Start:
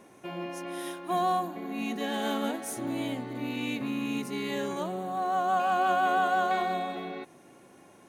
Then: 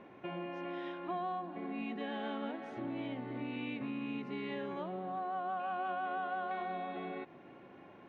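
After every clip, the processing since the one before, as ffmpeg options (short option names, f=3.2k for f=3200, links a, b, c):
-af "acompressor=threshold=-39dB:ratio=3,lowpass=f=3.1k:w=0.5412,lowpass=f=3.1k:w=1.3066"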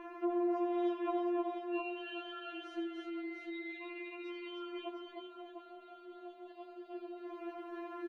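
-filter_complex "[0:a]acompressor=threshold=-46dB:ratio=4,asplit=2[a][b];[b]aecho=0:1:83|307|703:0.355|0.668|0.531[c];[a][c]amix=inputs=2:normalize=0,afftfilt=real='re*4*eq(mod(b,16),0)':imag='im*4*eq(mod(b,16),0)':win_size=2048:overlap=0.75,volume=8.5dB"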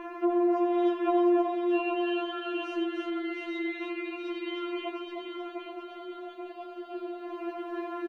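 -af "aecho=1:1:829|1658|2487|3316:0.473|0.161|0.0547|0.0186,volume=8dB"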